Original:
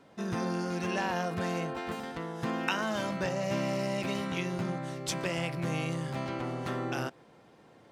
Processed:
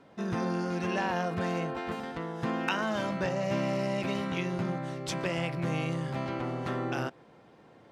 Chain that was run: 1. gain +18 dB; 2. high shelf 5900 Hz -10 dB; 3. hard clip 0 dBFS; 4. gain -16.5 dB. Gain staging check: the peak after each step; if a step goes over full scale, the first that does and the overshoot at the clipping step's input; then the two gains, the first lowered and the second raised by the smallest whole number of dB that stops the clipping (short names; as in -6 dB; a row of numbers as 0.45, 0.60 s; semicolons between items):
+5.5, +4.5, 0.0, -16.5 dBFS; step 1, 4.5 dB; step 1 +13 dB, step 4 -11.5 dB